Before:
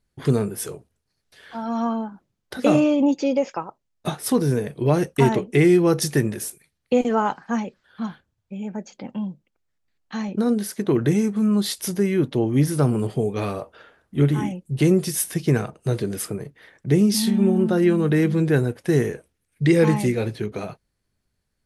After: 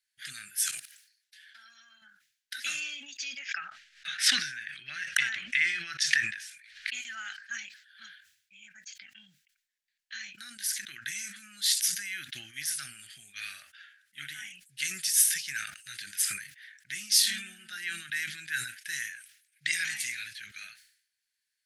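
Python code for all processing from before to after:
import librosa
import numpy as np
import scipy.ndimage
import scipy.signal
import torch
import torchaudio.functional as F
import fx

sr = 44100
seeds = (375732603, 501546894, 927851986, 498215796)

y = fx.chain(x, sr, fx.highpass(hz=350.0, slope=6),
    fx.level_steps(step_db=18),
    fx.quant_float(bits=8), at=(0.71, 2.02))
y = fx.chain(y, sr, fx.lowpass(hz=3800.0, slope=12),
    fx.peak_eq(hz=1500.0, db=3.5, octaves=1.7),
    fx.pre_swell(db_per_s=120.0), at=(3.39, 6.93))
y = scipy.signal.sosfilt(scipy.signal.ellip(4, 1.0, 40, 1600.0, 'highpass', fs=sr, output='sos'), y)
y = fx.dynamic_eq(y, sr, hz=6800.0, q=1.0, threshold_db=-44.0, ratio=4.0, max_db=5)
y = fx.sustainer(y, sr, db_per_s=88.0)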